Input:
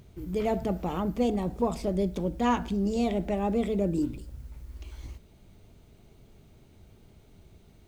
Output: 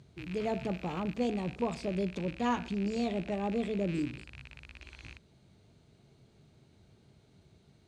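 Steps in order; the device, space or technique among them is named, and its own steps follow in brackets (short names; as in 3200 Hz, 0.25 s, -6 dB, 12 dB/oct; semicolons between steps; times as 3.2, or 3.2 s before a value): car door speaker with a rattle (rattling part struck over -41 dBFS, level -30 dBFS; speaker cabinet 83–9400 Hz, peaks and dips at 140 Hz +6 dB, 1600 Hz +3 dB, 4200 Hz +6 dB); gain -5.5 dB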